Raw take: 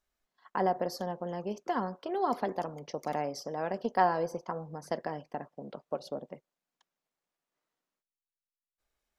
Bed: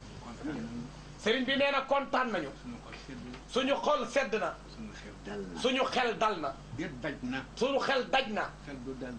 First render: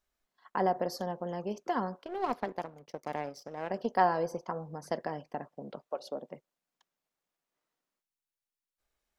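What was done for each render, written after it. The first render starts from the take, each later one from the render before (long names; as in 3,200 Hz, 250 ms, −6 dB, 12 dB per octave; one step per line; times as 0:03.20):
0:02.03–0:03.70: power curve on the samples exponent 1.4
0:05.87–0:06.32: high-pass filter 570 Hz → 150 Hz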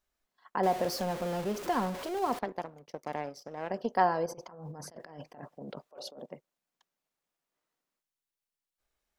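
0:00.63–0:02.39: converter with a step at zero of −35 dBFS
0:04.26–0:06.26: compressor whose output falls as the input rises −46 dBFS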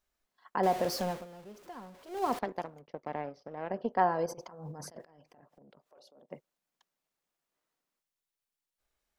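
0:01.07–0:02.25: duck −16.5 dB, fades 0.19 s
0:02.81–0:04.19: high-frequency loss of the air 290 metres
0:05.04–0:06.31: downward compressor 10 to 1, threshold −56 dBFS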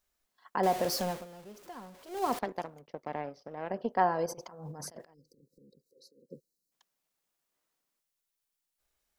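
0:05.14–0:06.72: time-frequency box erased 550–3,800 Hz
high-shelf EQ 4,600 Hz +6 dB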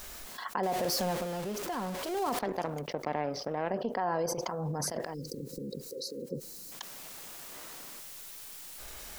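brickwall limiter −23.5 dBFS, peak gain reduction 10.5 dB
envelope flattener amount 70%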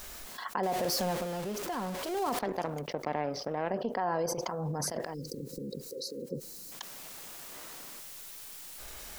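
no processing that can be heard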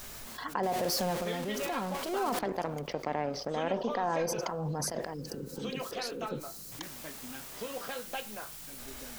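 mix in bed −10.5 dB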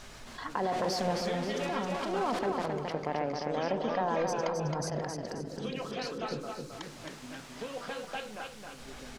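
high-frequency loss of the air 80 metres
on a send: repeating echo 267 ms, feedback 37%, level −4.5 dB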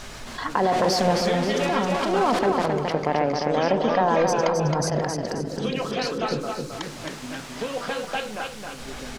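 level +10 dB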